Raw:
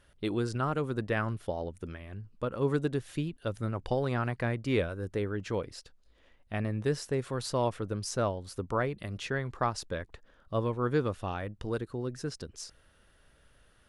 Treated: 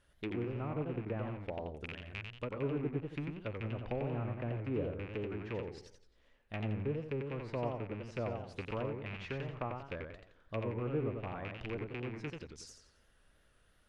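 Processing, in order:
loose part that buzzes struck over −38 dBFS, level −20 dBFS
treble cut that deepens with the level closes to 790 Hz, closed at −26.5 dBFS
feedback echo with a swinging delay time 89 ms, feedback 39%, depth 193 cents, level −4.5 dB
level −7.5 dB

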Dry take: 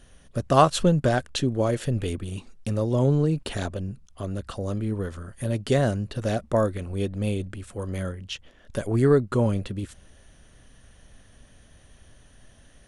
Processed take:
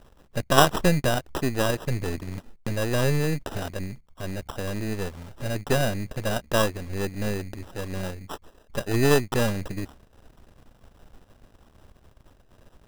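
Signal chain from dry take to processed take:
gain on one half-wave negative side −12 dB
decimation without filtering 20×
level +2.5 dB

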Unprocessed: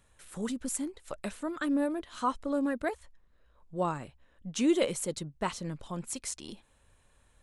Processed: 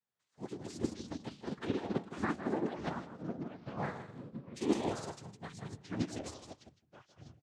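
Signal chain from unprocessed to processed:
brickwall limiter −25.5 dBFS, peak gain reduction 10 dB
cochlear-implant simulation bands 6
delay with pitch and tempo change per echo 91 ms, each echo −4 semitones, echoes 3
0:03.77–0:05.19: double-tracking delay 46 ms −7 dB
repeating echo 159 ms, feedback 21%, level −6 dB
expander for the loud parts 2.5 to 1, over −45 dBFS
level +2.5 dB

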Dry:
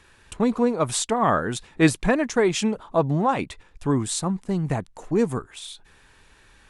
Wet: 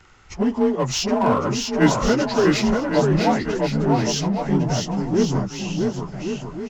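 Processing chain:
partials spread apart or drawn together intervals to 90%
low-shelf EQ 74 Hz +6.5 dB
in parallel at −3.5 dB: gain into a clipping stage and back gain 25.5 dB
on the sum: bouncing-ball delay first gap 650 ms, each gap 0.7×, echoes 5

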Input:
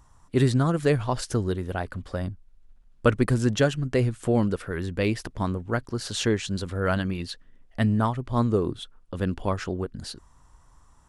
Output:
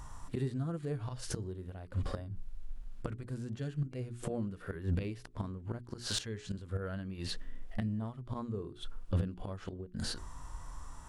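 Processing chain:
gate with flip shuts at −20 dBFS, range −25 dB
harmonic and percussive parts rebalanced percussive −17 dB
mains-hum notches 60/120/180/240/300/360/420 Hz
soft clipping −35 dBFS, distortion −20 dB
level +13 dB

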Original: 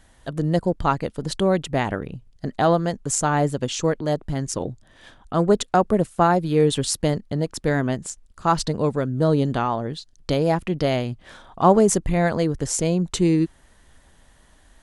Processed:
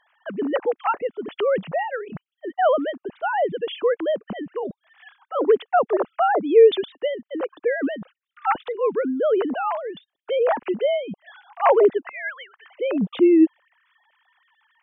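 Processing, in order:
three sine waves on the formant tracks
0:12.09–0:12.70: high-pass filter 1,200 Hz 24 dB per octave

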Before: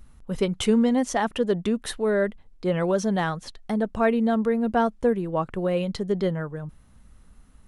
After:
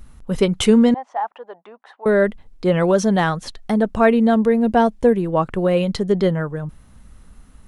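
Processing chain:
0:00.94–0:02.06: four-pole ladder band-pass 920 Hz, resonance 60%
0:04.34–0:05.17: parametric band 1,300 Hz −8 dB 0.34 octaves
level +7 dB

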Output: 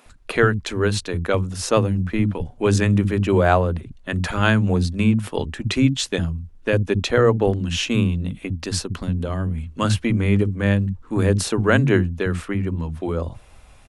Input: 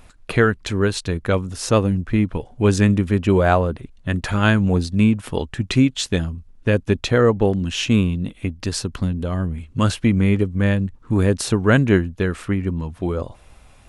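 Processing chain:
multiband delay without the direct sound highs, lows 60 ms, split 220 Hz

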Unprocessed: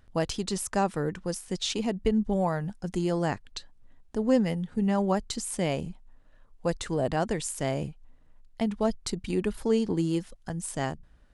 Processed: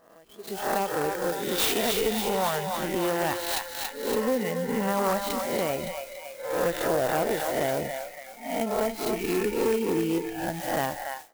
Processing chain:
peak hold with a rise ahead of every peak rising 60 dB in 0.88 s
downward compressor, threshold −25 dBFS, peak gain reduction 8.5 dB
feedback echo with a high-pass in the loop 282 ms, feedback 68%, high-pass 440 Hz, level −4.5 dB
automatic gain control gain up to 15.5 dB
0:01.58–0:04.25: high-shelf EQ 3,400 Hz +11.5 dB
noise reduction from a noise print of the clip's start 17 dB
bass and treble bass −13 dB, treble −13 dB
asymmetric clip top −15 dBFS
converter with an unsteady clock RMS 0.044 ms
level −6.5 dB

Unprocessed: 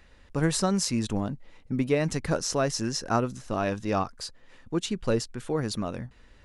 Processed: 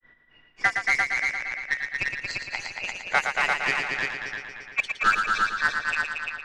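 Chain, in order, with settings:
frequency inversion band by band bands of 2,000 Hz
notch filter 840 Hz, Q 16
hum removal 281.5 Hz, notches 35
granular cloud 186 ms, grains 3.6 per second, spray 188 ms, pitch spread up and down by 7 semitones
in parallel at −3.5 dB: bit reduction 4 bits
on the sum: echo machine with several playback heads 115 ms, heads all three, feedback 51%, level −6 dB
low-pass that shuts in the quiet parts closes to 2,600 Hz, open at −18.5 dBFS
high-frequency loss of the air 100 metres
level +1.5 dB

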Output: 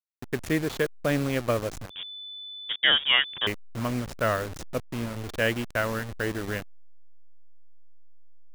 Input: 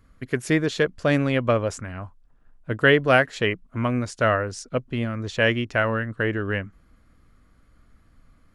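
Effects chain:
hold until the input has moved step −26.5 dBFS
0:01.90–0:03.47: voice inversion scrambler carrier 3,500 Hz
level −4.5 dB

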